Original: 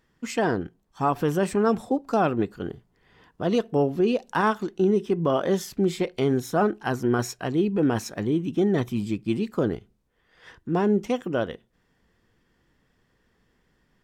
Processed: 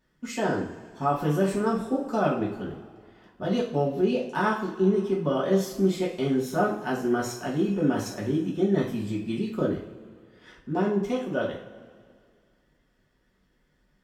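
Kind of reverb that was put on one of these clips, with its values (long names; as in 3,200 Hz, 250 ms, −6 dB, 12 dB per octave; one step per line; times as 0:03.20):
coupled-rooms reverb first 0.42 s, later 2.2 s, from −18 dB, DRR −4.5 dB
level −8 dB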